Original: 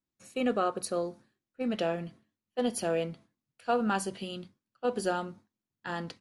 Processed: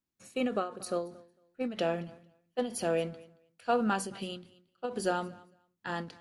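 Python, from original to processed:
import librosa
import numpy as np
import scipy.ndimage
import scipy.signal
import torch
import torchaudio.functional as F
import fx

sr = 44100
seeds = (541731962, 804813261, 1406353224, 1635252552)

y = fx.echo_feedback(x, sr, ms=226, feedback_pct=16, wet_db=-22.0)
y = fx.end_taper(y, sr, db_per_s=130.0)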